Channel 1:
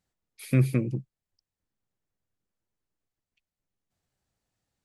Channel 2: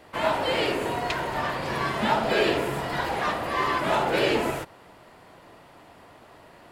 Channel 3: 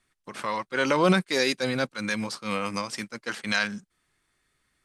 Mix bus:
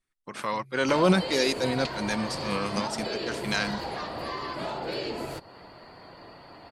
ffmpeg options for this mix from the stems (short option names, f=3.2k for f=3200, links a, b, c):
-filter_complex "[0:a]acompressor=threshold=-28dB:ratio=6,volume=-8.5dB[a];[1:a]acompressor=threshold=-32dB:ratio=6,equalizer=f=4.5k:t=o:w=0.21:g=14,adelay=750,volume=2.5dB[b];[2:a]volume=0.5dB,asplit=2[c][d];[d]apad=whole_len=213601[e];[a][e]sidechaincompress=threshold=-35dB:ratio=8:attack=8.2:release=180[f];[f][b][c]amix=inputs=3:normalize=0,afftdn=nr=13:nf=-57,adynamicequalizer=threshold=0.00501:dfrequency=1800:dqfactor=0.72:tfrequency=1800:tqfactor=0.72:attack=5:release=100:ratio=0.375:range=2.5:mode=cutabove:tftype=bell"